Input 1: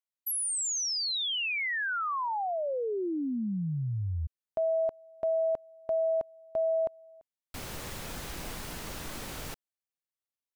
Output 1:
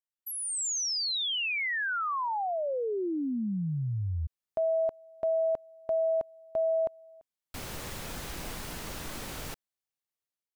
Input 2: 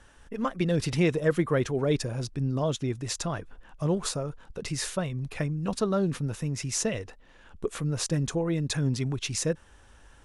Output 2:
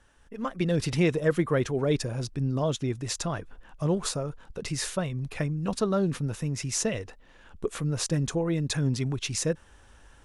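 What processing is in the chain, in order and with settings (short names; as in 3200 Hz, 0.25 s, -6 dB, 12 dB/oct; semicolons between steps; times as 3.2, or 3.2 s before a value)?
AGC gain up to 7 dB; gain -6.5 dB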